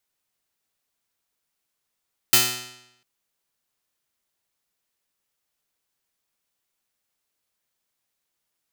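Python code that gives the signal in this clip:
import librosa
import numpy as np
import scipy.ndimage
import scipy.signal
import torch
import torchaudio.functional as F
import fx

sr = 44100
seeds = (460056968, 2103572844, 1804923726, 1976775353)

y = fx.pluck(sr, length_s=0.7, note=47, decay_s=0.84, pick=0.22, brightness='bright')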